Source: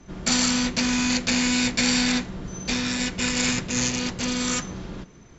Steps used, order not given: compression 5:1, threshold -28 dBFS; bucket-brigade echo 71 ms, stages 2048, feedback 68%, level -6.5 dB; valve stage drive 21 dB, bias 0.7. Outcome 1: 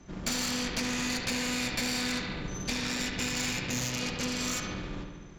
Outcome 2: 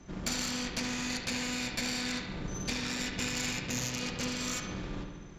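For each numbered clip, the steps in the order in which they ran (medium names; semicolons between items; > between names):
valve stage > bucket-brigade echo > compression; compression > valve stage > bucket-brigade echo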